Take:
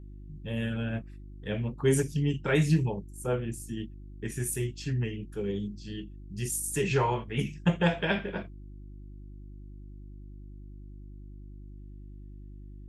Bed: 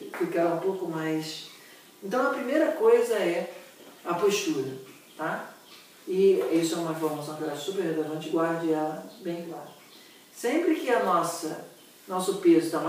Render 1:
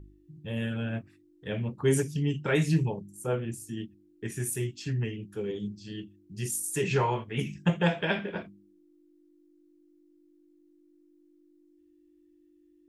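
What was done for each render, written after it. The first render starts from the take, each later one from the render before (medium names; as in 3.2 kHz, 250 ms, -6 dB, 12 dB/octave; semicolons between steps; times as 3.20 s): de-hum 50 Hz, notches 5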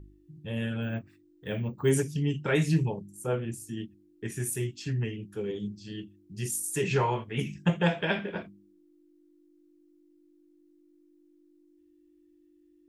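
0.82–1.90 s: careless resampling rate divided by 2×, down filtered, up hold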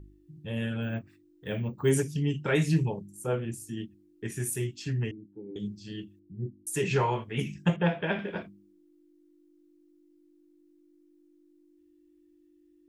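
5.11–5.56 s: cascade formant filter u; 6.19–6.67 s: Bessel low-pass 590 Hz, order 8; 7.76–8.19 s: distance through air 280 m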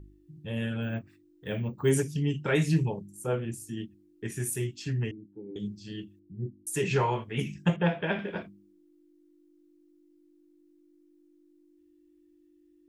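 no audible change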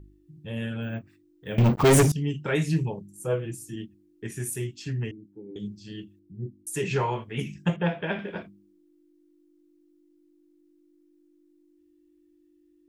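1.58–2.12 s: waveshaping leveller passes 5; 3.19–3.76 s: comb 6.2 ms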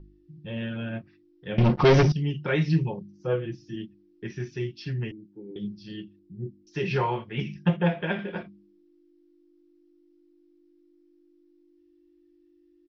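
steep low-pass 5.7 kHz 96 dB/octave; comb 5.6 ms, depth 38%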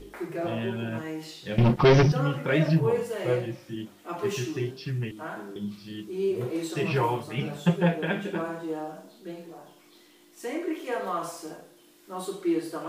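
add bed -6.5 dB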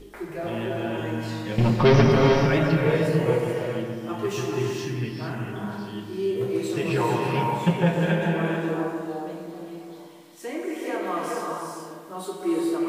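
bucket-brigade echo 142 ms, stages 2048, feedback 58%, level -7 dB; gated-style reverb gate 470 ms rising, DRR 1 dB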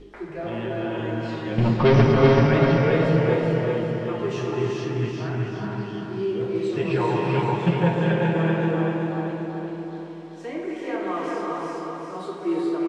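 distance through air 120 m; feedback delay 383 ms, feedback 49%, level -4.5 dB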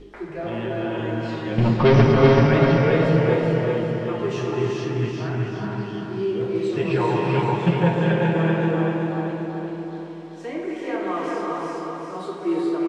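trim +1.5 dB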